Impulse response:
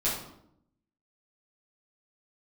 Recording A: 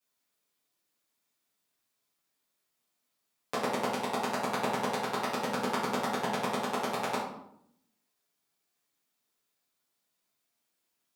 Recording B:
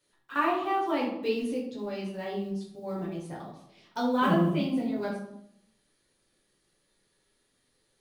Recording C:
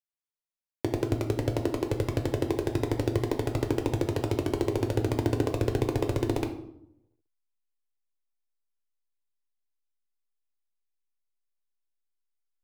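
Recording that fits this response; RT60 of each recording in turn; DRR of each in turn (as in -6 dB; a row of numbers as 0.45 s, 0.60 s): A; 0.75 s, 0.75 s, 0.75 s; -10.0 dB, -5.0 dB, 4.5 dB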